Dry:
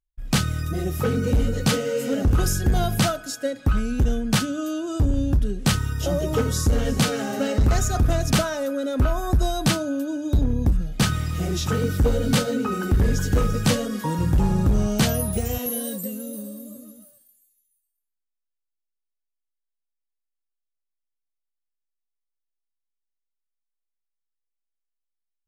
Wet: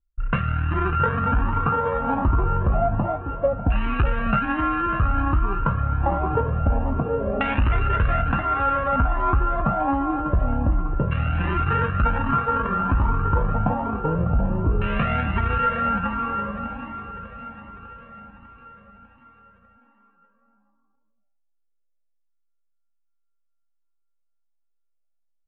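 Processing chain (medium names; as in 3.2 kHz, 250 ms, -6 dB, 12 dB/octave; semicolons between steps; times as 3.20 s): sorted samples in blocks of 32 samples; level-controlled noise filter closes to 570 Hz, open at -20.5 dBFS; in parallel at +2.5 dB: gain riding within 3 dB; on the sum: LFO low-pass saw down 0.27 Hz 520–2300 Hz; compression, threshold -15 dBFS, peak gain reduction 8.5 dB; on a send: feedback delay 598 ms, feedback 60%, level -12 dB; on the sum: resampled via 8 kHz; Shepard-style flanger rising 1.3 Hz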